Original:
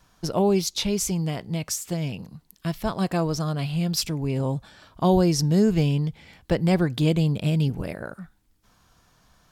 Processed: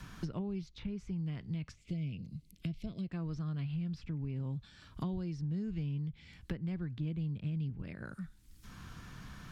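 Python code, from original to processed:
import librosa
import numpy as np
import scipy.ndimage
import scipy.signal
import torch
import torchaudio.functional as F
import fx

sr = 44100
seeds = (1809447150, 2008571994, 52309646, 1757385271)

y = fx.spec_box(x, sr, start_s=1.75, length_s=1.36, low_hz=690.0, high_hz=2000.0, gain_db=-16)
y = fx.tone_stack(y, sr, knobs='6-0-2')
y = fx.env_lowpass_down(y, sr, base_hz=1800.0, full_db=-39.0)
y = fx.band_squash(y, sr, depth_pct=100)
y = y * 10.0 ** (2.5 / 20.0)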